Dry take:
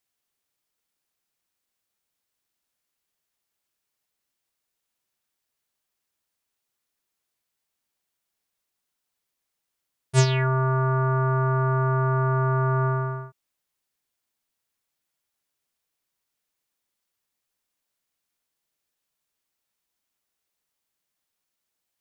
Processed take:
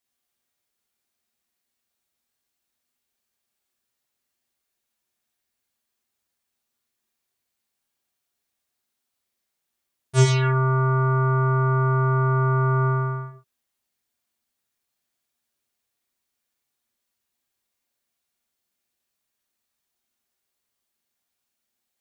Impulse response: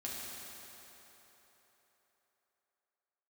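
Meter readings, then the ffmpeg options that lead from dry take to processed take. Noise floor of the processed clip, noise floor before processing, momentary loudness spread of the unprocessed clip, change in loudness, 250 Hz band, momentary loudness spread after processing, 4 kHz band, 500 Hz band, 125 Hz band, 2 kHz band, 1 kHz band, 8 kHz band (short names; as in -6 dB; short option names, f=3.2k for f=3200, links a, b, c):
-81 dBFS, -82 dBFS, 4 LU, +2.0 dB, n/a, 7 LU, +1.0 dB, +1.0 dB, +2.5 dB, +1.5 dB, +1.5 dB, +1.5 dB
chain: -filter_complex "[1:a]atrim=start_sample=2205,afade=t=out:st=0.17:d=0.01,atrim=end_sample=7938[a];[0:a][a]afir=irnorm=-1:irlink=0,volume=3dB"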